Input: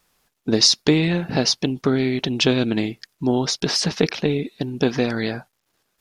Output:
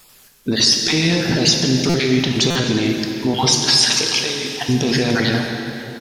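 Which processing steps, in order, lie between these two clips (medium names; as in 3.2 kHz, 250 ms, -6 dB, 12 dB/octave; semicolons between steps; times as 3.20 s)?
random holes in the spectrogram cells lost 25%; in parallel at +1 dB: compressor with a negative ratio -28 dBFS; 3.48–4.50 s: on the sum: high-pass 1.4 kHz 6 dB/octave; peak limiter -13 dBFS, peak gain reduction 10.5 dB; treble shelf 3.4 kHz +8.5 dB; delay 1187 ms -20.5 dB; plate-style reverb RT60 3.2 s, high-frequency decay 0.8×, DRR 1.5 dB; buffer glitch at 1.89/2.50 s, samples 256, times 8; trim +2 dB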